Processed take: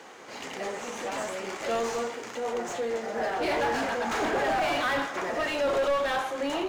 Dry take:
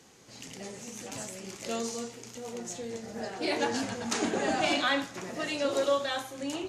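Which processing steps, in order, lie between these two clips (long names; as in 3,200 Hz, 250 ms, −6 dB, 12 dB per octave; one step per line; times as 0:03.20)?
high-pass filter 450 Hz 6 dB per octave
notch filter 2,600 Hz, Q 21
in parallel at −3 dB: sample-rate reduction 6,900 Hz
on the sum: mid-hump overdrive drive 28 dB, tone 1,400 Hz, clips at −10.5 dBFS
level −7 dB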